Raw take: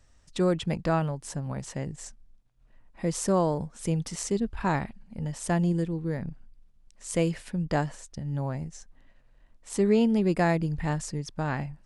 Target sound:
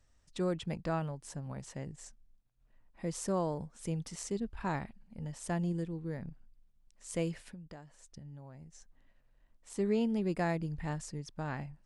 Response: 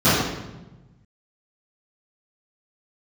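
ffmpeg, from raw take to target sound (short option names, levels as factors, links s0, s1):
-filter_complex "[0:a]asettb=1/sr,asplit=3[s0][s1][s2];[s0]atrim=end=7.494[s3];[s1]atrim=start=7.49:end=9.78,asetpts=PTS-STARTPTS,afade=t=in:d=0.004:c=qsin,afade=t=out:st=2.286:d=0.004:c=qsin,acompressor=threshold=0.0141:ratio=20[s4];[s2]atrim=start=9.776[s5];[s3][s4]acrossfade=d=0.004:c1=hsin:c2=qsin[s6];[s6][s5]acrossfade=d=0.004:c1=qsin:c2=hsin,volume=0.376"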